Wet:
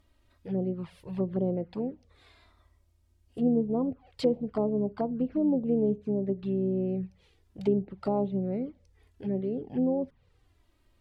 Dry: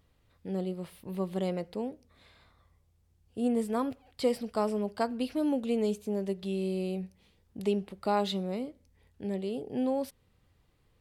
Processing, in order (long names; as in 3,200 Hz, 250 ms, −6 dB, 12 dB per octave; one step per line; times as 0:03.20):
treble cut that deepens with the level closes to 630 Hz, closed at −27.5 dBFS
flanger swept by the level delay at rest 3.3 ms, full sweep at −28 dBFS
pitch-shifted copies added −7 semitones −14 dB
level +4 dB